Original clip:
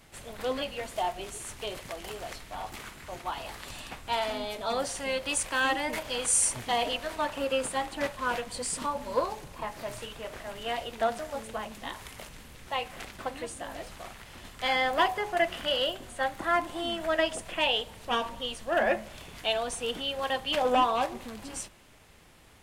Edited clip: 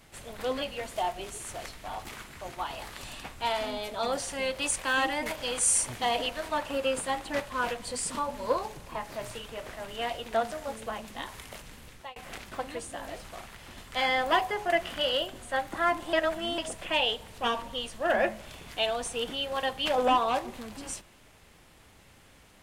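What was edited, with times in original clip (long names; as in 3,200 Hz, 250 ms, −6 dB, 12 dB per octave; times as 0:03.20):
0:01.54–0:02.21: remove
0:12.56–0:12.83: fade out
0:16.80–0:17.25: reverse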